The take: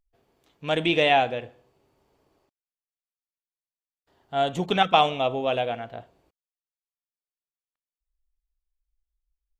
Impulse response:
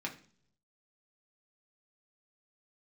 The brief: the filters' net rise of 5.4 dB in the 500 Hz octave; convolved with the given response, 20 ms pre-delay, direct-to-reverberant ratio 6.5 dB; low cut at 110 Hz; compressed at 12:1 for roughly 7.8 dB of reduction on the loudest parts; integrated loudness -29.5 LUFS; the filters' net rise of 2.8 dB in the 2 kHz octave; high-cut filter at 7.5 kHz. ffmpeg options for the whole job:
-filter_complex "[0:a]highpass=110,lowpass=7500,equalizer=f=500:t=o:g=7,equalizer=f=2000:t=o:g=3.5,acompressor=threshold=0.141:ratio=12,asplit=2[s0][s1];[1:a]atrim=start_sample=2205,adelay=20[s2];[s1][s2]afir=irnorm=-1:irlink=0,volume=0.376[s3];[s0][s3]amix=inputs=2:normalize=0,volume=0.473"

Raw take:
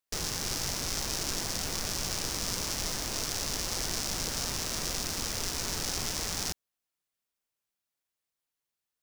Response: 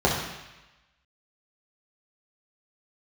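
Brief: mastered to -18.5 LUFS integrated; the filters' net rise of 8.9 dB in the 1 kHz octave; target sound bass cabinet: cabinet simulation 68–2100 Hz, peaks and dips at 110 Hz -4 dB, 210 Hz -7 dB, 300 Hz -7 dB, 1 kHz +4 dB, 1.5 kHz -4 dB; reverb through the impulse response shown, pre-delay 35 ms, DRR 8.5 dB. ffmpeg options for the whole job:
-filter_complex "[0:a]equalizer=f=1000:t=o:g=9,asplit=2[s0][s1];[1:a]atrim=start_sample=2205,adelay=35[s2];[s1][s2]afir=irnorm=-1:irlink=0,volume=0.0501[s3];[s0][s3]amix=inputs=2:normalize=0,highpass=f=68:w=0.5412,highpass=f=68:w=1.3066,equalizer=f=110:t=q:w=4:g=-4,equalizer=f=210:t=q:w=4:g=-7,equalizer=f=300:t=q:w=4:g=-7,equalizer=f=1000:t=q:w=4:g=4,equalizer=f=1500:t=q:w=4:g=-4,lowpass=f=2100:w=0.5412,lowpass=f=2100:w=1.3066,volume=7.08"

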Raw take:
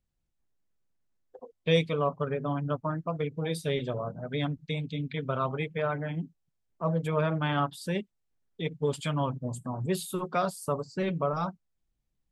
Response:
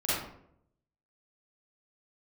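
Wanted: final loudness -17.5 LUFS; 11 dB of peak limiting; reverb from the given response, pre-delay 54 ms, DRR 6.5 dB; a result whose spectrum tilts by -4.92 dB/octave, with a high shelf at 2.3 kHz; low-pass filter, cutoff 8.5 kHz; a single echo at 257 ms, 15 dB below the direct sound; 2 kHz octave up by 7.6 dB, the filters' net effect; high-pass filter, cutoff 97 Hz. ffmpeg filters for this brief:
-filter_complex "[0:a]highpass=97,lowpass=8500,equalizer=f=2000:t=o:g=5,highshelf=f=2300:g=8.5,alimiter=limit=0.106:level=0:latency=1,aecho=1:1:257:0.178,asplit=2[s0][s1];[1:a]atrim=start_sample=2205,adelay=54[s2];[s1][s2]afir=irnorm=-1:irlink=0,volume=0.158[s3];[s0][s3]amix=inputs=2:normalize=0,volume=4.73"

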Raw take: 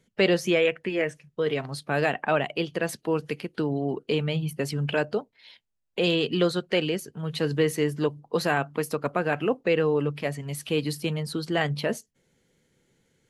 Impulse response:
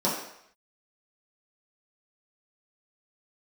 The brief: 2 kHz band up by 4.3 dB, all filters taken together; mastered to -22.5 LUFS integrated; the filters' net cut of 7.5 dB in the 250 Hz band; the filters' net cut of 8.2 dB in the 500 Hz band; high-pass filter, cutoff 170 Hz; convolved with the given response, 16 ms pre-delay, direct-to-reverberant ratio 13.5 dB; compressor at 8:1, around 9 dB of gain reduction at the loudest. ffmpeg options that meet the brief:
-filter_complex "[0:a]highpass=170,equalizer=f=250:t=o:g=-6.5,equalizer=f=500:t=o:g=-8,equalizer=f=2000:t=o:g=6,acompressor=threshold=0.0398:ratio=8,asplit=2[s0][s1];[1:a]atrim=start_sample=2205,adelay=16[s2];[s1][s2]afir=irnorm=-1:irlink=0,volume=0.0501[s3];[s0][s3]amix=inputs=2:normalize=0,volume=3.55"

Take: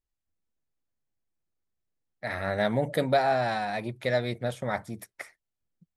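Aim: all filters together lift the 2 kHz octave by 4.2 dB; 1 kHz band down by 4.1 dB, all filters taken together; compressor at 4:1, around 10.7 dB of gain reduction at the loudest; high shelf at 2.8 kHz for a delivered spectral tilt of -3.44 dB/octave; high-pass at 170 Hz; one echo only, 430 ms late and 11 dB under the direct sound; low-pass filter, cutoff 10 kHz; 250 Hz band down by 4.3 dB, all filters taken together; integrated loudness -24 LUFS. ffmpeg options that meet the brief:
-af "highpass=170,lowpass=10000,equalizer=f=250:t=o:g=-3.5,equalizer=f=1000:t=o:g=-8.5,equalizer=f=2000:t=o:g=5,highshelf=f=2800:g=8.5,acompressor=threshold=0.02:ratio=4,aecho=1:1:430:0.282,volume=4.47"

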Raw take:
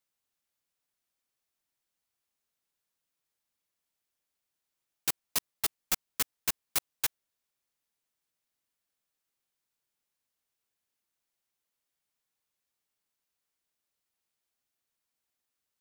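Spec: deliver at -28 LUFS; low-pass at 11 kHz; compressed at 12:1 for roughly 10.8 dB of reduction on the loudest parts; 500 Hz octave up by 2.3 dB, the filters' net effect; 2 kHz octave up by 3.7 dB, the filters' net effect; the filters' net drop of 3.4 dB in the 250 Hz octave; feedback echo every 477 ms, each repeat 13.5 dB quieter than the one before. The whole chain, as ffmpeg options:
-af "lowpass=11000,equalizer=f=250:t=o:g=-6.5,equalizer=f=500:t=o:g=4.5,equalizer=f=2000:t=o:g=4.5,acompressor=threshold=0.0141:ratio=12,aecho=1:1:477|954:0.211|0.0444,volume=6.31"

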